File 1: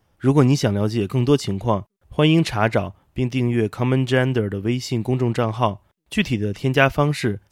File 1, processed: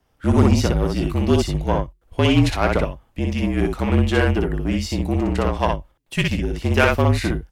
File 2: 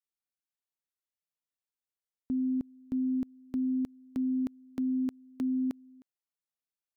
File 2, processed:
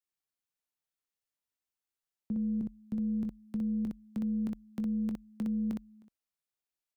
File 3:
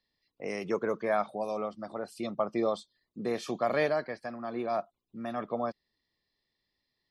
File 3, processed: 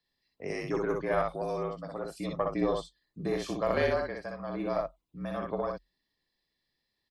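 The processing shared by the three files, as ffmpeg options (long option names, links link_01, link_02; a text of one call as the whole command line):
ffmpeg -i in.wav -af "aecho=1:1:21|61:0.237|0.708,aeval=exprs='1*(cos(1*acos(clip(val(0)/1,-1,1)))-cos(1*PI/2))+0.0631*(cos(8*acos(clip(val(0)/1,-1,1)))-cos(8*PI/2))':channel_layout=same,afreqshift=-43,volume=-1.5dB" out.wav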